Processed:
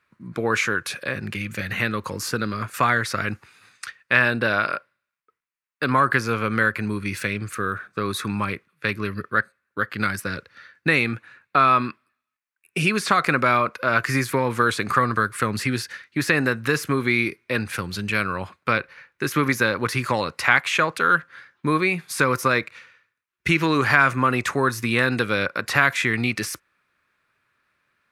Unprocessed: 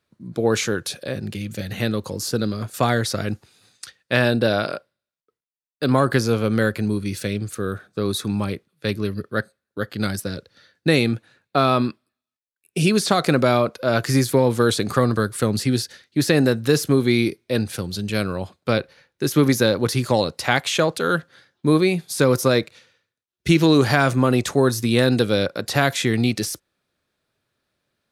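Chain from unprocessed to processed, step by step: high-order bell 1.6 kHz +12.5 dB; in parallel at +3 dB: compression, threshold -21 dBFS, peak gain reduction 16 dB; on the sum: trim -9.5 dB

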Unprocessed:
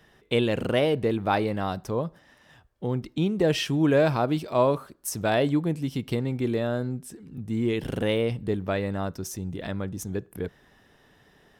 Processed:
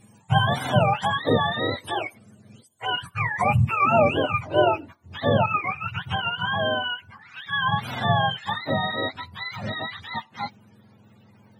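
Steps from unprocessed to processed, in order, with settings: spectrum inverted on a logarithmic axis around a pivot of 610 Hz; peaking EQ 8.8 kHz +14 dB 0.82 oct, from 2.86 s +6 dB, from 4.61 s -7 dB; trim +4 dB

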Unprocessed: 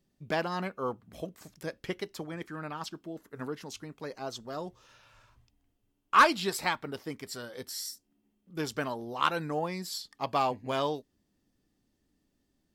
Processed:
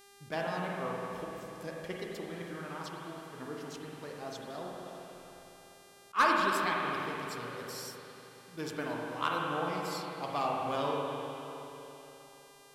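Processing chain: spring tank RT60 3.5 s, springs 41/50 ms, chirp 65 ms, DRR -2.5 dB; mains buzz 400 Hz, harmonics 32, -52 dBFS -3 dB/octave; attacks held to a fixed rise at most 430 dB/s; trim -6.5 dB

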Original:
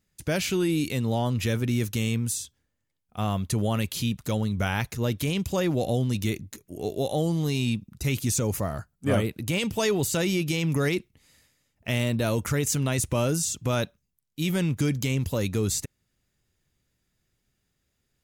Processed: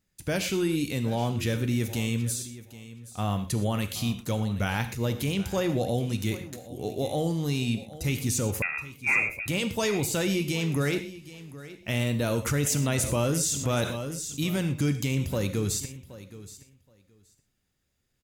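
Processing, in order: gated-style reverb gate 140 ms flat, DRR 8.5 dB; 8.62–9.46 s: frequency inversion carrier 2.6 kHz; feedback delay 773 ms, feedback 15%, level -16.5 dB; 12.46–14.44 s: level flattener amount 50%; trim -2 dB

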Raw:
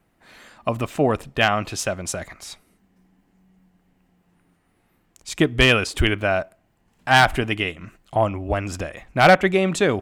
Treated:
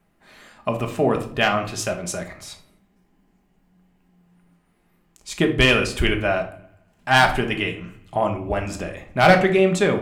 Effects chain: bucket-brigade echo 84 ms, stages 2048, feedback 58%, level -23 dB; simulated room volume 490 m³, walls furnished, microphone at 1.3 m; trim -2 dB

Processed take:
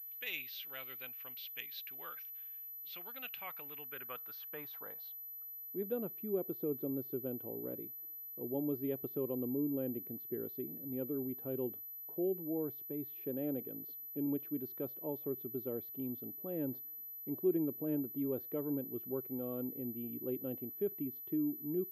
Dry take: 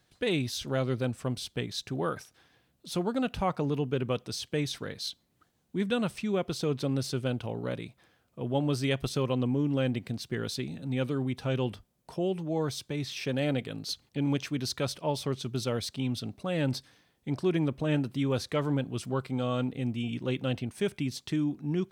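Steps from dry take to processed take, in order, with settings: band-pass sweep 2.5 kHz -> 350 Hz, 3.51–6.10 s; class-D stage that switches slowly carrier 12 kHz; trim -3 dB

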